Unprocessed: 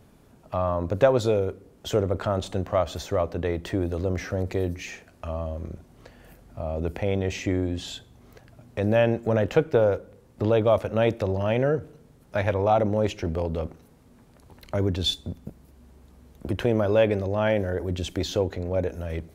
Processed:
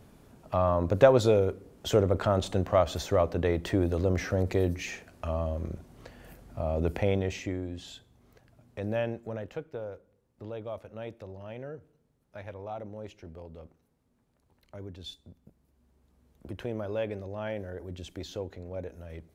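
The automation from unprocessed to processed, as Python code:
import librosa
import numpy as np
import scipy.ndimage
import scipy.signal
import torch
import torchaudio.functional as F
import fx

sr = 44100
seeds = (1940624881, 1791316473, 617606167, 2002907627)

y = fx.gain(x, sr, db=fx.line((7.03, 0.0), (7.59, -9.5), (8.98, -9.5), (9.65, -18.0), (15.38, -18.0), (16.46, -12.0)))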